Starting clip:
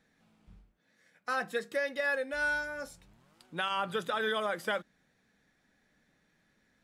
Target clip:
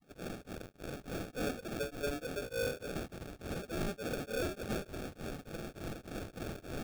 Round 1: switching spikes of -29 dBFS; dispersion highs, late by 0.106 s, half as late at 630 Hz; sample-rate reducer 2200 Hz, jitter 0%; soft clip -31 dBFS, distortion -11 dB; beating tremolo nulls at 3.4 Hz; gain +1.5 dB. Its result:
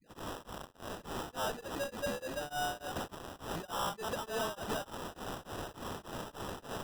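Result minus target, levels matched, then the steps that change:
sample-rate reducer: distortion -16 dB
change: sample-rate reducer 1000 Hz, jitter 0%

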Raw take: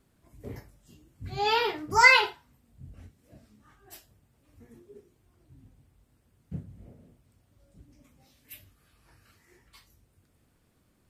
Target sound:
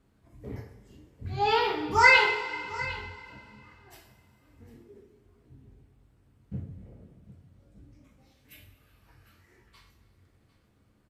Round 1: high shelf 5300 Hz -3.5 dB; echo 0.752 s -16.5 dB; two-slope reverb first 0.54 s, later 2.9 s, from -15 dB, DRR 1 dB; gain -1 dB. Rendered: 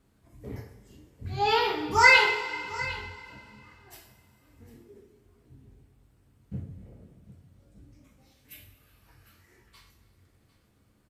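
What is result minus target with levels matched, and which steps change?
8000 Hz band +3.5 dB
change: high shelf 5300 Hz -11 dB

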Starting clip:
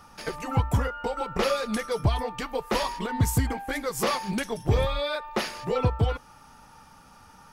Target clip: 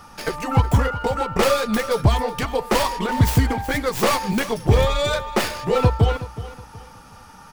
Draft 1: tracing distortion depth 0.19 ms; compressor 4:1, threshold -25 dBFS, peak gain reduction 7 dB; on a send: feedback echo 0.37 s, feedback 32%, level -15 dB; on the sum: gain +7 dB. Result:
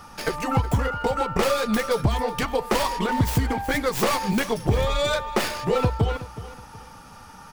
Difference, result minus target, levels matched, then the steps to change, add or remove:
compressor: peak gain reduction +7 dB
remove: compressor 4:1, threshold -25 dBFS, peak gain reduction 7 dB

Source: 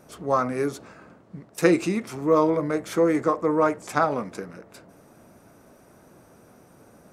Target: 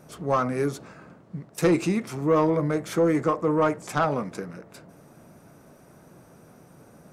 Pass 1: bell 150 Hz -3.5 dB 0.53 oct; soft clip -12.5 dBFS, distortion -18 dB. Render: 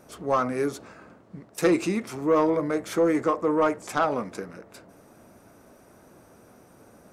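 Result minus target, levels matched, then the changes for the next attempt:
125 Hz band -7.5 dB
change: bell 150 Hz +7 dB 0.53 oct

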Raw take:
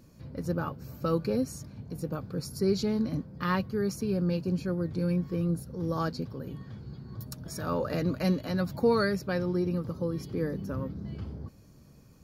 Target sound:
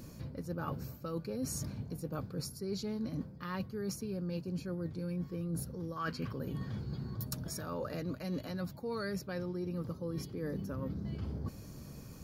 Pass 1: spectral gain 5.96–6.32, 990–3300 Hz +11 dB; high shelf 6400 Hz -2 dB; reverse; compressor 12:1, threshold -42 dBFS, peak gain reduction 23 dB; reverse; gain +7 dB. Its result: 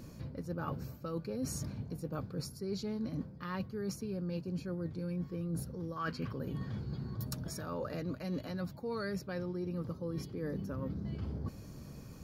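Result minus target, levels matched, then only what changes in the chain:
8000 Hz band -2.5 dB
change: high shelf 6400 Hz +4 dB

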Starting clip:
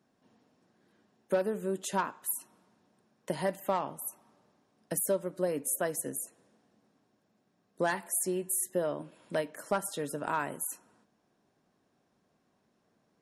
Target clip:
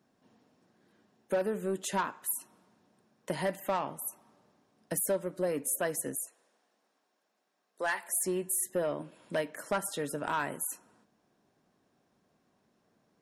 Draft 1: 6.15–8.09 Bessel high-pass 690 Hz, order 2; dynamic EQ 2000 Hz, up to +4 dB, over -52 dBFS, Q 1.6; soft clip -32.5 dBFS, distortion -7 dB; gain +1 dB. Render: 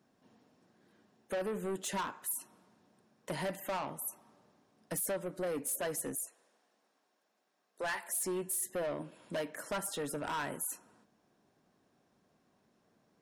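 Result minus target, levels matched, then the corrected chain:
soft clip: distortion +10 dB
6.15–8.09 Bessel high-pass 690 Hz, order 2; dynamic EQ 2000 Hz, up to +4 dB, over -52 dBFS, Q 1.6; soft clip -22.5 dBFS, distortion -17 dB; gain +1 dB

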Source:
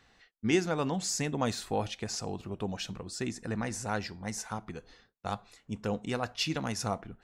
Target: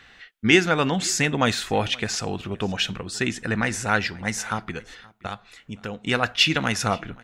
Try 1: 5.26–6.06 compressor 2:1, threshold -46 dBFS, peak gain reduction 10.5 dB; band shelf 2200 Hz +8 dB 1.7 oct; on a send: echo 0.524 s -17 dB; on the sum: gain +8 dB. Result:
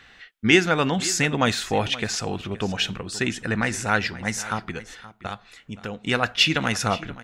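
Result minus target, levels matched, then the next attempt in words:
echo-to-direct +7 dB
5.26–6.06 compressor 2:1, threshold -46 dBFS, peak gain reduction 10.5 dB; band shelf 2200 Hz +8 dB 1.7 oct; on a send: echo 0.524 s -24 dB; on the sum: gain +8 dB

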